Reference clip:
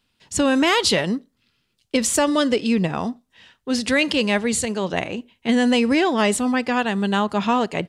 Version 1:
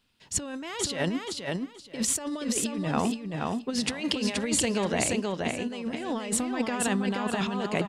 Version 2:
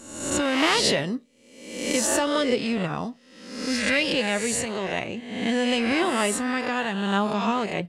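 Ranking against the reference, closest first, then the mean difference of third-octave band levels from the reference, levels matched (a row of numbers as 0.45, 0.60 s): 2, 1; 5.5, 8.5 dB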